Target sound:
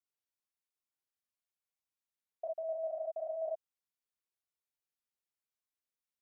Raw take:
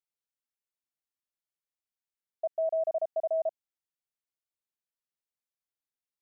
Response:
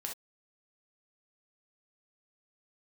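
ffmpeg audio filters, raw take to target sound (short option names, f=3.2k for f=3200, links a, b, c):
-filter_complex "[0:a]asettb=1/sr,asplit=3[a][b][c];[a]atrim=end=2.444[d];[b]atrim=start=2.44:end=3.48,asetpts=PTS-STARTPTS,afade=t=in:d=0.004:c=qsin,afade=t=out:st=1.036:d=0.004:c=qsin,lowshelf=f=430:g=-10[e];[c]atrim=start=3.476[f];[d][e]acrossfade=d=0.004:c1=hsin:c2=qsin[g];[g][f]acrossfade=d=0.004:c1=qsin:c2=hsin[h];[1:a]atrim=start_sample=2205,asetrate=57330,aresample=44100[i];[h][i]afir=irnorm=-1:irlink=0"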